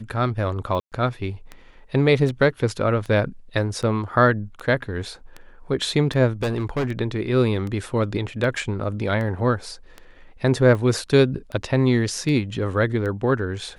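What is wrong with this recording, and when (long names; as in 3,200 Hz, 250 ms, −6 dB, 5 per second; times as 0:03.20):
scratch tick 78 rpm −20 dBFS
0:00.80–0:00.92: drop-out 118 ms
0:06.42–0:06.89: clipping −19.5 dBFS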